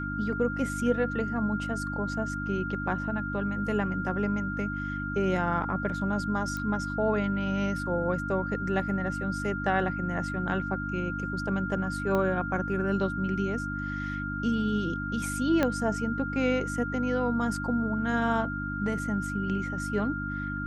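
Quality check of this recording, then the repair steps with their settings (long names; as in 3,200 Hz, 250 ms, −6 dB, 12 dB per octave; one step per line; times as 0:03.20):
mains hum 50 Hz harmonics 6 −35 dBFS
whistle 1,400 Hz −34 dBFS
0:06.57: click −22 dBFS
0:12.15: click −17 dBFS
0:15.63: click −12 dBFS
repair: click removal
hum removal 50 Hz, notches 6
notch filter 1,400 Hz, Q 30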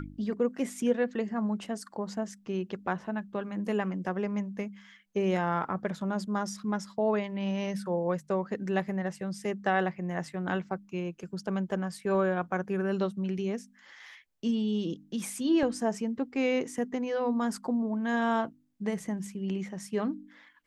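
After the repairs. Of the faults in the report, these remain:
0:12.15: click
0:15.63: click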